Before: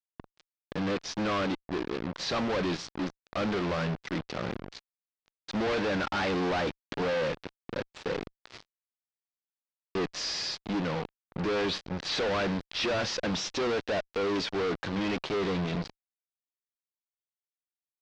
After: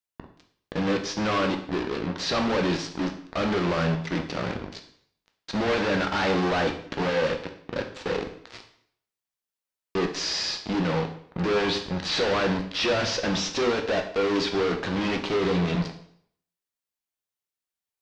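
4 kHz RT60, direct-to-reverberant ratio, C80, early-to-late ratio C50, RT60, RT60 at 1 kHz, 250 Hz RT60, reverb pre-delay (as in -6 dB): 0.60 s, 4.0 dB, 12.5 dB, 9.0 dB, 0.65 s, 0.65 s, 0.60 s, 5 ms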